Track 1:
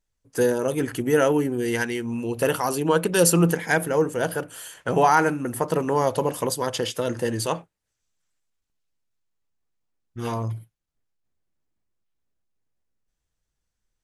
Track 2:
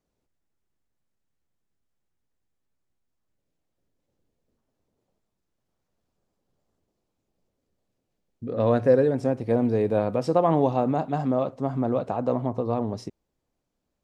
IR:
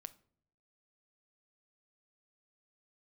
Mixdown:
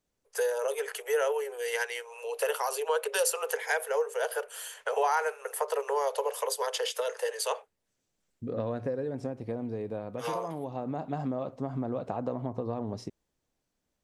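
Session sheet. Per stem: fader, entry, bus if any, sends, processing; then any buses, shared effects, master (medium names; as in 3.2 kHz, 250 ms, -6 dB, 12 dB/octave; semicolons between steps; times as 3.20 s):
-1.0 dB, 0.00 s, no send, Chebyshev high-pass 410 Hz, order 10
-3.0 dB, 0.00 s, no send, compression, threshold -23 dBFS, peak gain reduction 9.5 dB; auto duck -6 dB, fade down 1.60 s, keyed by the first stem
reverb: none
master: compression 2:1, threshold -29 dBFS, peak gain reduction 8 dB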